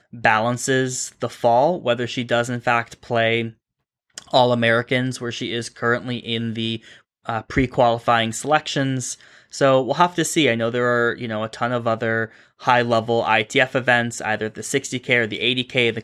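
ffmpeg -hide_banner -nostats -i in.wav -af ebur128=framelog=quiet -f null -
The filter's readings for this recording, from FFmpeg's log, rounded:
Integrated loudness:
  I:         -20.3 LUFS
  Threshold: -30.6 LUFS
Loudness range:
  LRA:         2.5 LU
  Threshold: -40.7 LUFS
  LRA low:   -22.0 LUFS
  LRA high:  -19.5 LUFS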